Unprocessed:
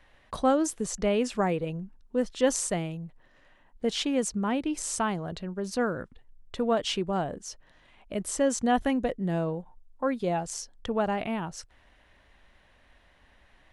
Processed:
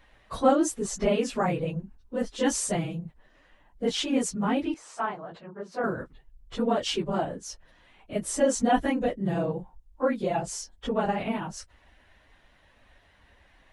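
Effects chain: phase scrambler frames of 50 ms; 4.74–5.84 band-pass 1000 Hz, Q 0.9; gain +1 dB

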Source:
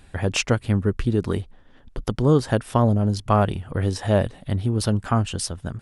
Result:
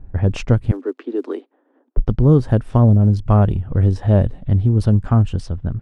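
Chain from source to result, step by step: block floating point 7-bit; 0.71–1.97 steep high-pass 270 Hz 72 dB/oct; low-pass opened by the level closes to 1100 Hz, open at -19 dBFS; tilt -3.5 dB/oct; gain -2.5 dB

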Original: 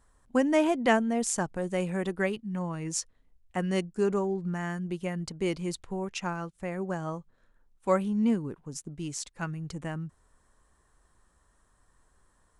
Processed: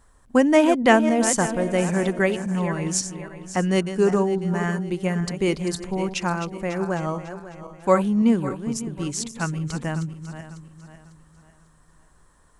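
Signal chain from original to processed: regenerating reverse delay 0.274 s, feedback 59%, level -10.5 dB; gain +7.5 dB

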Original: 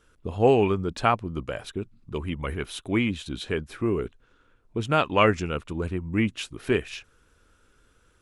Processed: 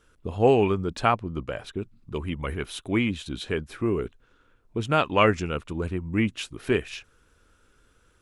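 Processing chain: 1.14–1.79 high shelf 6500 Hz -7.5 dB

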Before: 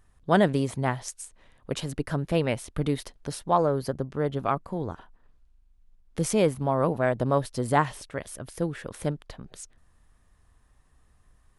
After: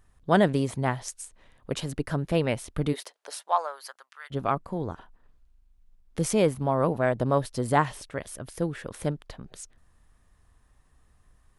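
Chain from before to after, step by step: 2.92–4.3 HPF 370 Hz -> 1500 Hz 24 dB/oct

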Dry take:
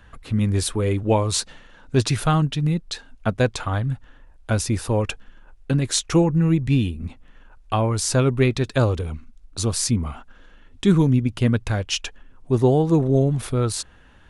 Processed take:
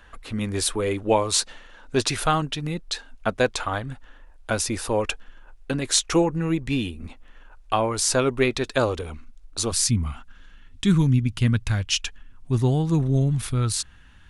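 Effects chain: bell 120 Hz -13 dB 1.9 oct, from 9.72 s 510 Hz; gain +2 dB

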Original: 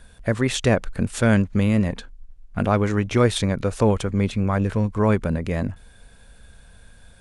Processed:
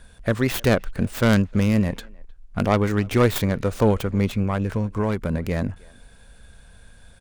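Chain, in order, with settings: tracing distortion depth 0.25 ms; 4.42–5.34 compressor, threshold -19 dBFS, peak gain reduction 6 dB; speakerphone echo 0.31 s, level -25 dB

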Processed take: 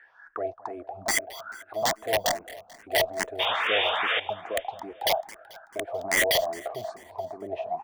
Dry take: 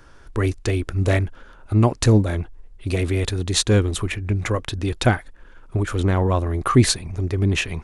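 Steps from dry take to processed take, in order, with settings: 1.18–1.82 HPF 200 Hz; bell 750 Hz +13.5 dB 1.2 oct; notch 570 Hz, Q 12; in parallel at -2 dB: compressor, threshold -21 dBFS, peak gain reduction 15.5 dB; on the sum: limiter -7.5 dBFS, peak gain reduction 10.5 dB; auto-wah 650–1900 Hz, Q 17, down, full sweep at -16 dBFS; wrapped overs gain 24 dB; 3.39–4.2 painted sound noise 430–3700 Hz -32 dBFS; on a send: feedback echo 0.219 s, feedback 56%, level -19 dB; on the sum: endless phaser +2.4 Hz; gain +9 dB

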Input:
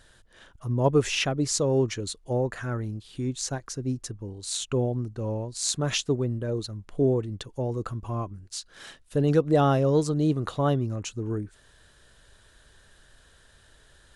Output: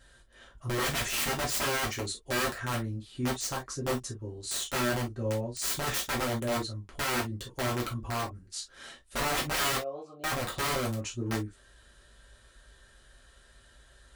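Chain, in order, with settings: 9.77–10.24 vowel filter a; wrapped overs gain 22.5 dB; non-linear reverb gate 80 ms falling, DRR -3.5 dB; gain -6.5 dB

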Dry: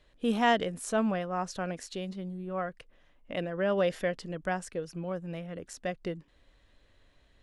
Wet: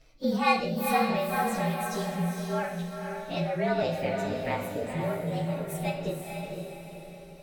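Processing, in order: inharmonic rescaling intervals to 113%; reverb removal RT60 0.72 s; in parallel at +2.5 dB: compressor, threshold -40 dBFS, peak gain reduction 17 dB; 3.82–4.95 on the sum: ring modulator 67 Hz; diffused feedback echo 0.492 s, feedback 46%, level -4 dB; non-linear reverb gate 0.22 s falling, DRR 3 dB

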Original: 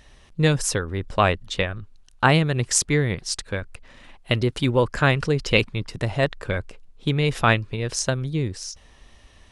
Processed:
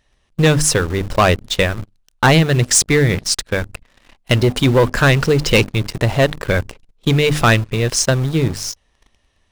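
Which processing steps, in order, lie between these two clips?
notches 50/100/150/200/250/300 Hz; sample leveller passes 3; in parallel at -8 dB: bit-crush 4-bit; on the sum: gain -4.5 dB

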